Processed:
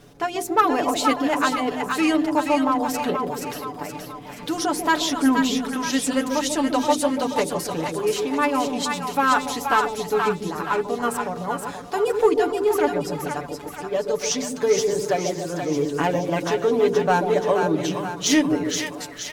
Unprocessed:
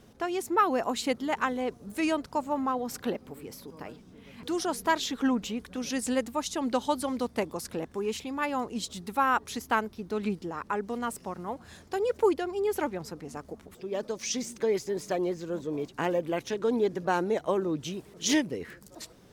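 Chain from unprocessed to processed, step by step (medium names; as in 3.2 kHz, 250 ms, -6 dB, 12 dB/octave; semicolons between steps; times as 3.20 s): hum notches 50/100/150/200/250/300/350/400/450 Hz; comb 6.9 ms, depth 70%; in parallel at -5 dB: hard clipper -23 dBFS, distortion -10 dB; on the sum: two-band feedback delay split 720 Hz, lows 142 ms, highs 475 ms, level -4.5 dB; trim +2 dB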